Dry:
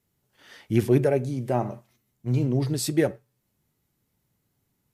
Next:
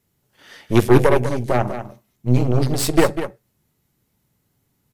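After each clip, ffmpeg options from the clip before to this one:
-filter_complex "[0:a]aeval=exprs='0.376*(cos(1*acos(clip(val(0)/0.376,-1,1)))-cos(1*PI/2))+0.0841*(cos(6*acos(clip(val(0)/0.376,-1,1)))-cos(6*PI/2))':c=same,asplit=2[a][b];[b]aecho=0:1:197:0.299[c];[a][c]amix=inputs=2:normalize=0,volume=5.5dB"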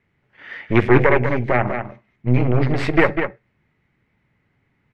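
-filter_complex "[0:a]lowpass=f=2.1k:t=q:w=3.5,asplit=2[a][b];[b]alimiter=limit=-11.5dB:level=0:latency=1,volume=0dB[c];[a][c]amix=inputs=2:normalize=0,volume=-4dB"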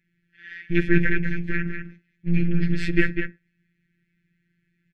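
-af "asuperstop=centerf=790:order=12:qfactor=0.75,aecho=1:1:1.2:0.43,afftfilt=real='hypot(re,im)*cos(PI*b)':imag='0':win_size=1024:overlap=0.75,volume=-1dB"

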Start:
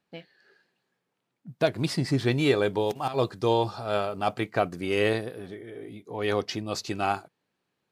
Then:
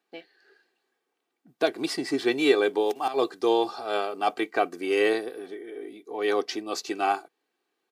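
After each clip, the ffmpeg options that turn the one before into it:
-af "highpass=f=240:w=0.5412,highpass=f=240:w=1.3066,aecho=1:1:2.6:0.51"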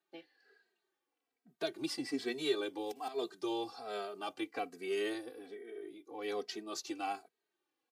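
-filter_complex "[0:a]acrossover=split=270|3000[a][b][c];[b]acompressor=threshold=-41dB:ratio=1.5[d];[a][d][c]amix=inputs=3:normalize=0,asplit=2[e][f];[f]adelay=2.8,afreqshift=-1.2[g];[e][g]amix=inputs=2:normalize=1,volume=-5dB"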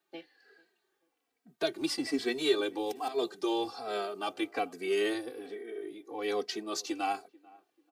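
-filter_complex "[0:a]acrossover=split=140|5800[a][b][c];[a]aeval=exprs='(mod(1190*val(0)+1,2)-1)/1190':c=same[d];[b]asplit=2[e][f];[f]adelay=440,lowpass=f=1.2k:p=1,volume=-23dB,asplit=2[g][h];[h]adelay=440,lowpass=f=1.2k:p=1,volume=0.35[i];[e][g][i]amix=inputs=3:normalize=0[j];[d][j][c]amix=inputs=3:normalize=0,volume=6dB"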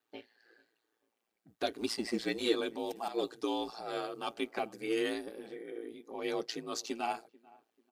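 -af "aeval=exprs='val(0)*sin(2*PI*57*n/s)':c=same"

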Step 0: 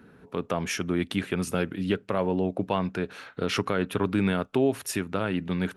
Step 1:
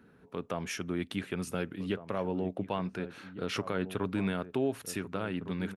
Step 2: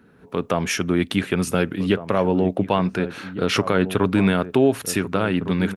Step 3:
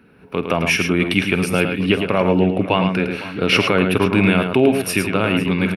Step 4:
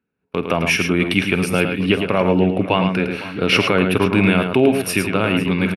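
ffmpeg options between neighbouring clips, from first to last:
-filter_complex "[0:a]asplit=2[a][b];[b]adelay=1458,volume=-12dB,highshelf=f=4k:g=-32.8[c];[a][c]amix=inputs=2:normalize=0,volume=-7dB"
-af "dynaudnorm=f=160:g=3:m=8dB,volume=5.5dB"
-af "superequalizer=12b=2.51:15b=0.355,aecho=1:1:48|108|505:0.168|0.473|0.133,volume=2dB"
-af "agate=range=-28dB:threshold=-33dB:ratio=16:detection=peak,areverse,acompressor=mode=upward:threshold=-34dB:ratio=2.5,areverse,aresample=32000,aresample=44100"

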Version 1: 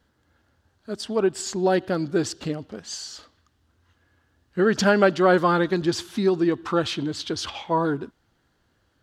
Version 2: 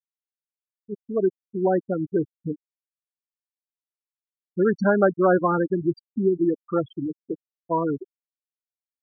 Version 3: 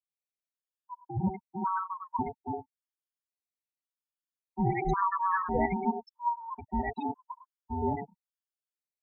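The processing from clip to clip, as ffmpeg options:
-af "afftfilt=real='re*gte(hypot(re,im),0.224)':imag='im*gte(hypot(re,im),0.224)':win_size=1024:overlap=0.75,highshelf=f=2.8k:g=-11.5"
-filter_complex "[0:a]acrossover=split=210|640[a][b][c];[a]adelay=70[d];[c]adelay=100[e];[d][b][e]amix=inputs=3:normalize=0,aeval=exprs='val(0)*sin(2*PI*570*n/s)':c=same,afftfilt=real='re*gt(sin(2*PI*0.91*pts/sr)*(1-2*mod(floor(b*sr/1024/910),2)),0)':imag='im*gt(sin(2*PI*0.91*pts/sr)*(1-2*mod(floor(b*sr/1024/910),2)),0)':win_size=1024:overlap=0.75"

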